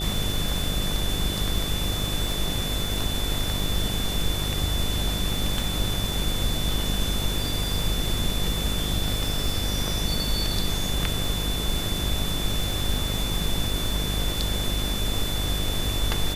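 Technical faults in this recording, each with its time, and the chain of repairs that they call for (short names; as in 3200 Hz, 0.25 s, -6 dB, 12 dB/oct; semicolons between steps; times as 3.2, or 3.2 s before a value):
buzz 50 Hz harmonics 15 -30 dBFS
crackle 45/s -30 dBFS
tone 3500 Hz -31 dBFS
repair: de-click; notch 3500 Hz, Q 30; de-hum 50 Hz, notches 15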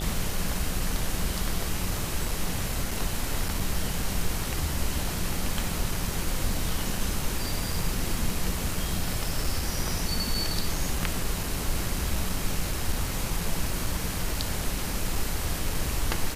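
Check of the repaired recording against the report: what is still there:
none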